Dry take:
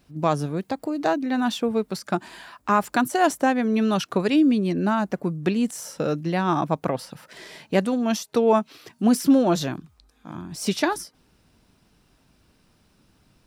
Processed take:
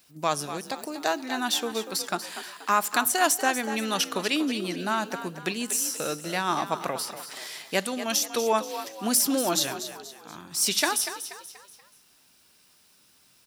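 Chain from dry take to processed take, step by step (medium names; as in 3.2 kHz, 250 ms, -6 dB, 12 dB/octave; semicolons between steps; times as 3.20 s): tilt EQ +4 dB/octave; frequency-shifting echo 240 ms, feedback 42%, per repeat +47 Hz, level -11 dB; on a send at -21 dB: reverberation RT60 1.1 s, pre-delay 3 ms; on the sum: trim -2.5 dB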